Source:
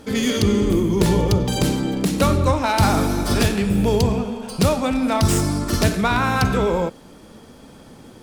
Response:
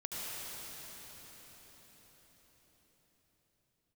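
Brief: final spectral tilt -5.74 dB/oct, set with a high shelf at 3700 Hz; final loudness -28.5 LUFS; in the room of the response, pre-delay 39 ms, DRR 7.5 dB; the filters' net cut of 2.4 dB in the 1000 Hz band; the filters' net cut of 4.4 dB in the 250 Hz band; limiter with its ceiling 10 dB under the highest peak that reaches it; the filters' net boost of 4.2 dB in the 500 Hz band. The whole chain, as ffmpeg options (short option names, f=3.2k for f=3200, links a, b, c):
-filter_complex "[0:a]equalizer=f=250:t=o:g=-8.5,equalizer=f=500:t=o:g=9,equalizer=f=1k:t=o:g=-5,highshelf=f=3.7k:g=-7.5,alimiter=limit=-14dB:level=0:latency=1,asplit=2[a][b];[1:a]atrim=start_sample=2205,adelay=39[c];[b][c]afir=irnorm=-1:irlink=0,volume=-10.5dB[d];[a][d]amix=inputs=2:normalize=0,volume=-6dB"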